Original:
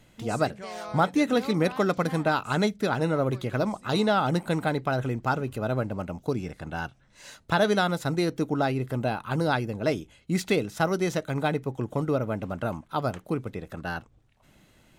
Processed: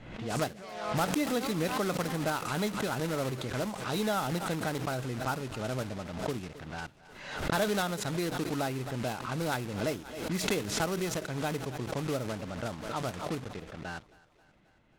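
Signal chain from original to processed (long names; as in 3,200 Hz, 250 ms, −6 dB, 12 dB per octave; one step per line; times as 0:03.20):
one scale factor per block 3 bits
low-pass that shuts in the quiet parts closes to 2,400 Hz, open at −22 dBFS
on a send: feedback echo with a high-pass in the loop 268 ms, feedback 64%, high-pass 200 Hz, level −21.5 dB
on the sum: background raised ahead of every attack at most 57 dB per second
level −7.5 dB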